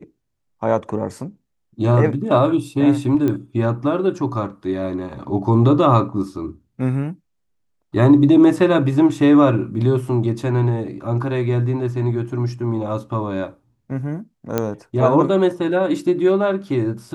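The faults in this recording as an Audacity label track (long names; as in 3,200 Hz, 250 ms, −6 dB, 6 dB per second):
3.280000	3.280000	click −11 dBFS
14.580000	14.580000	click −6 dBFS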